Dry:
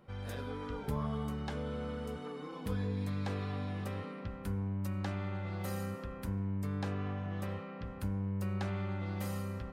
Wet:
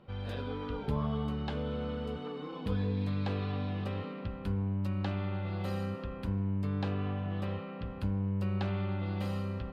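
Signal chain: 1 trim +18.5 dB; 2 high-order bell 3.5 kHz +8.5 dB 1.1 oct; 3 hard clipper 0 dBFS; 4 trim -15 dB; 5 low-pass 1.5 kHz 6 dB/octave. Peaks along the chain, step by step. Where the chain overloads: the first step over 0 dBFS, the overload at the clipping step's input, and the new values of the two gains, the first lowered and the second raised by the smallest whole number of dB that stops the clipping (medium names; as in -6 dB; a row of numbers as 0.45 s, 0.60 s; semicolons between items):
-4.0 dBFS, -3.5 dBFS, -3.5 dBFS, -18.5 dBFS, -19.5 dBFS; nothing clips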